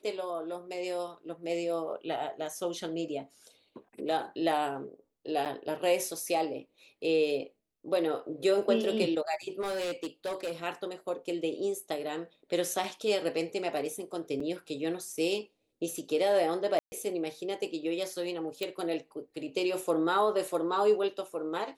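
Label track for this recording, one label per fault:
5.450000	5.460000	gap 8.1 ms
9.600000	10.520000	clipped -30 dBFS
12.840000	12.840000	gap 2.6 ms
14.400000	14.400000	gap 4 ms
16.790000	16.920000	gap 0.13 s
18.630000	18.630000	pop

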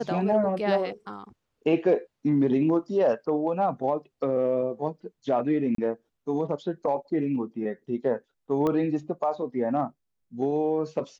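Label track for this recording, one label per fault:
5.750000	5.780000	gap 33 ms
8.670000	8.670000	pop -16 dBFS

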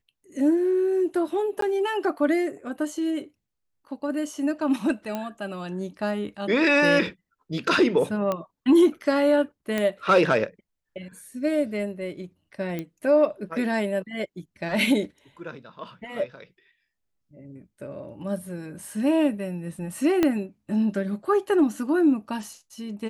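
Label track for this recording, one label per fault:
1.610000	1.620000	gap 13 ms
5.150000	5.150000	pop -16 dBFS
8.320000	8.320000	pop -14 dBFS
9.780000	9.780000	pop -12 dBFS
12.790000	12.790000	pop -18 dBFS
20.230000	20.230000	pop -9 dBFS

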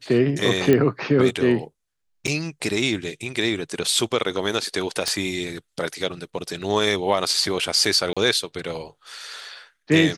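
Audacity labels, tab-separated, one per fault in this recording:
0.730000	0.730000	pop -7 dBFS
2.270000	2.280000	gap 6.8 ms
5.080000	5.080000	pop -8 dBFS
8.130000	8.170000	gap 36 ms

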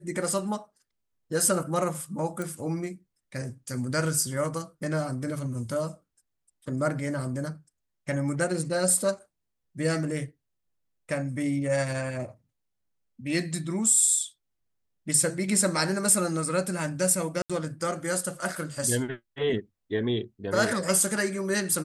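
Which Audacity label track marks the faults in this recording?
2.420000	2.420000	pop
17.420000	17.500000	gap 76 ms

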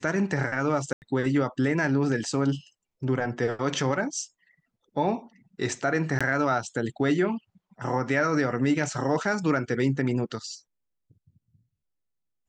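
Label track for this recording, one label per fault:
0.930000	1.020000	gap 89 ms
6.190000	6.210000	gap 16 ms

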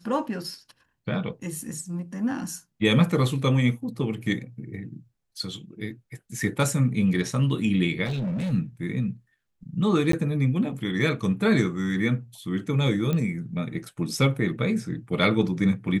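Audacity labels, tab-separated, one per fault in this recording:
8.050000	8.530000	clipped -25 dBFS
10.120000	10.130000	gap 13 ms
13.130000	13.130000	pop -15 dBFS

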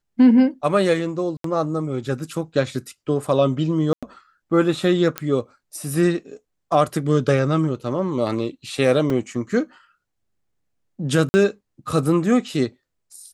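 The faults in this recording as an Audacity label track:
1.370000	1.440000	gap 73 ms
3.930000	4.030000	gap 96 ms
5.180000	5.180000	pop -7 dBFS
9.100000	9.100000	gap 2.1 ms
11.290000	11.340000	gap 50 ms

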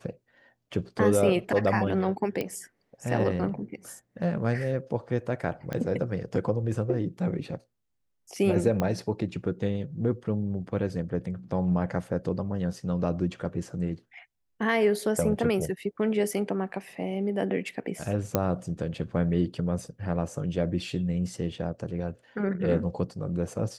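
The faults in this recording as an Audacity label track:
2.410000	2.410000	pop -17 dBFS
5.730000	5.730000	pop -19 dBFS
8.800000	8.800000	pop -14 dBFS
18.350000	18.350000	pop -9 dBFS

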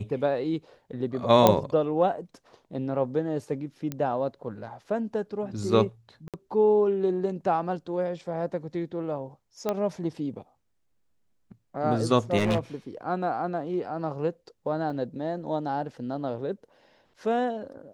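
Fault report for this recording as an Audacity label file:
1.470000	1.470000	pop -4 dBFS
3.920000	3.920000	pop -17 dBFS
6.280000	6.340000	gap 57 ms
9.690000	9.690000	pop -14 dBFS
12.370000	12.590000	clipped -19.5 dBFS
14.900000	14.900000	gap 3.3 ms

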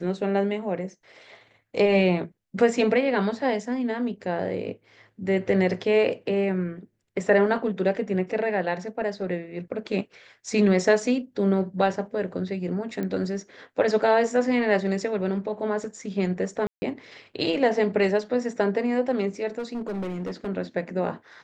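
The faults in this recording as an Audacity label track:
13.030000	13.030000	pop -19 dBFS
16.670000	16.820000	gap 0.15 s
19.580000	20.480000	clipped -27 dBFS

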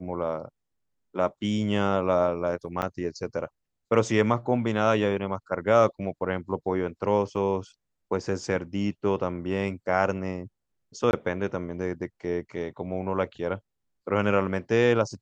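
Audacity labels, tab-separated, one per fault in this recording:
2.820000	2.820000	gap 4.3 ms
7.360000	7.370000	gap 7.3 ms
11.110000	11.130000	gap 21 ms

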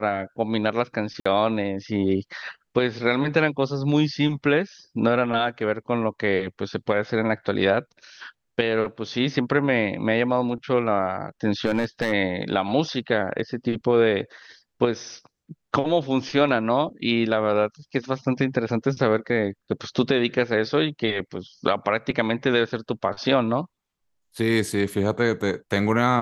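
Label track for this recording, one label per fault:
1.200000	1.250000	gap 55 ms
11.650000	12.130000	clipped -17 dBFS

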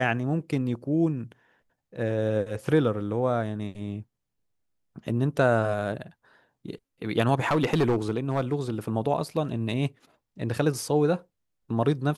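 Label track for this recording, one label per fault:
7.460000	8.540000	clipped -18 dBFS

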